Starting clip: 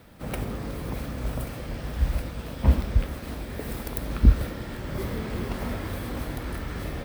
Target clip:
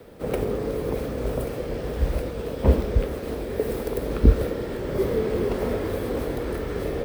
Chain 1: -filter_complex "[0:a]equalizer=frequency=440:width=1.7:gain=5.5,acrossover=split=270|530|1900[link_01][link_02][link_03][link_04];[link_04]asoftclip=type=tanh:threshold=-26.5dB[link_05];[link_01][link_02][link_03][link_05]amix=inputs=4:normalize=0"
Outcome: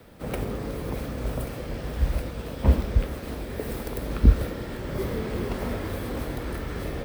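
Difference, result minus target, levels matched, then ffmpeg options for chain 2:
500 Hz band −5.5 dB
-filter_complex "[0:a]equalizer=frequency=440:width=1.7:gain=15.5,acrossover=split=270|530|1900[link_01][link_02][link_03][link_04];[link_04]asoftclip=type=tanh:threshold=-26.5dB[link_05];[link_01][link_02][link_03][link_05]amix=inputs=4:normalize=0"

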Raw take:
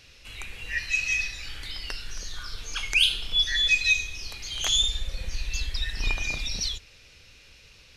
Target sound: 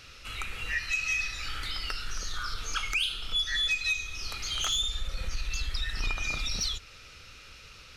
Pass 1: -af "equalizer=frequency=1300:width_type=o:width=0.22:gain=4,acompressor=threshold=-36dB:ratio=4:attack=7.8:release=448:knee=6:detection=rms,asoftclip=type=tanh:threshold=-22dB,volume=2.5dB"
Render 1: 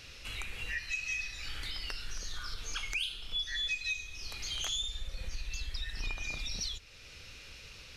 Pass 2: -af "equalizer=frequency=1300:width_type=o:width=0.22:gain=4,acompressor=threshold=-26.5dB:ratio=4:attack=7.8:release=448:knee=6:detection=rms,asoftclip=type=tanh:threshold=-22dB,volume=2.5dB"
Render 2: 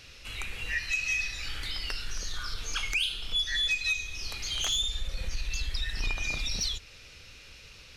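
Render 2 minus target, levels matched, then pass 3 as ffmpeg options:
1,000 Hz band −6.0 dB
-af "equalizer=frequency=1300:width_type=o:width=0.22:gain=15.5,acompressor=threshold=-26.5dB:ratio=4:attack=7.8:release=448:knee=6:detection=rms,asoftclip=type=tanh:threshold=-22dB,volume=2.5dB"

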